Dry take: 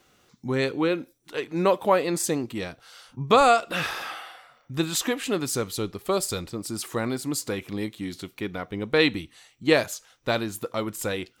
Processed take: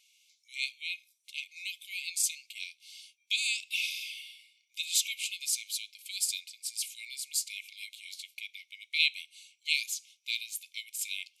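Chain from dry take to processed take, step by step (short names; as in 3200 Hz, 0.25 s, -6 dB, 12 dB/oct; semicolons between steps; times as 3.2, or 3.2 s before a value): brick-wall FIR band-pass 2100–13000 Hz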